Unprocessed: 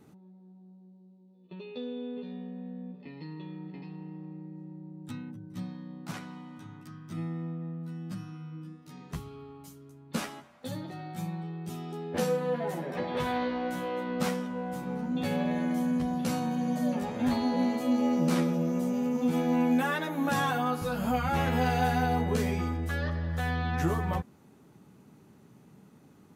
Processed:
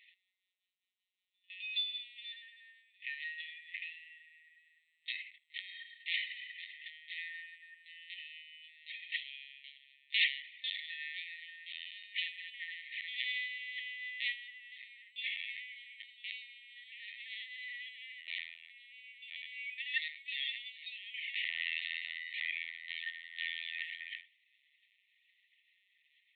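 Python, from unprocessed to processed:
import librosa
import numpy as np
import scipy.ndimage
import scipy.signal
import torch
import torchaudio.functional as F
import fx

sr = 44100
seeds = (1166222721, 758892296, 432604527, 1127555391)

p1 = fx.rider(x, sr, range_db=10, speed_s=2.0)
p2 = p1 + fx.echo_single(p1, sr, ms=83, db=-19.5, dry=0)
p3 = fx.lpc_vocoder(p2, sr, seeds[0], excitation='pitch_kept', order=16)
p4 = fx.brickwall_highpass(p3, sr, low_hz=1800.0)
y = F.gain(torch.from_numpy(p4), 7.0).numpy()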